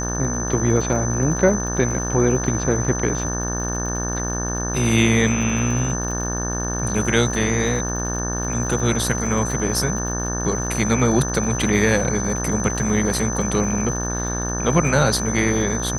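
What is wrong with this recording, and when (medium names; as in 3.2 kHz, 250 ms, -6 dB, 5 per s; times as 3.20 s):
buzz 60 Hz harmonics 30 -26 dBFS
crackle 74 per s -30 dBFS
whine 6.1 kHz -27 dBFS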